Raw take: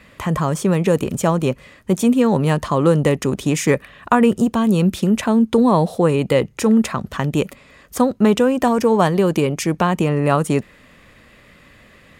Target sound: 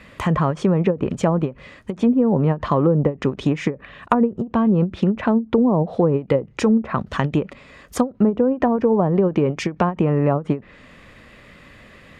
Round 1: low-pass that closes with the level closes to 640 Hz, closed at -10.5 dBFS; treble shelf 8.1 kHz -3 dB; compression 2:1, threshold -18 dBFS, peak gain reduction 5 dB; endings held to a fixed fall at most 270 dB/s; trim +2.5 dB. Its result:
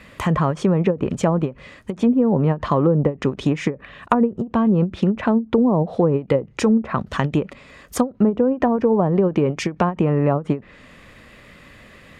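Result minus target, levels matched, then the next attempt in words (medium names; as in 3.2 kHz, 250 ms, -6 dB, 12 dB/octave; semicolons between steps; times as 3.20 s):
8 kHz band +2.5 dB
low-pass that closes with the level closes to 640 Hz, closed at -10.5 dBFS; treble shelf 8.1 kHz -9.5 dB; compression 2:1, threshold -18 dBFS, peak gain reduction 5 dB; endings held to a fixed fall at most 270 dB/s; trim +2.5 dB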